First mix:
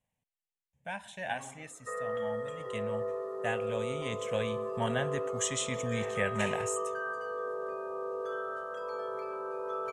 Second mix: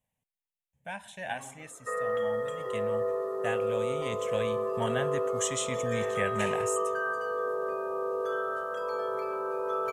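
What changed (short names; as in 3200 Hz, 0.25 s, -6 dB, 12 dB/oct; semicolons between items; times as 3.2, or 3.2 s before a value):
background +5.0 dB; master: remove LPF 9400 Hz 12 dB/oct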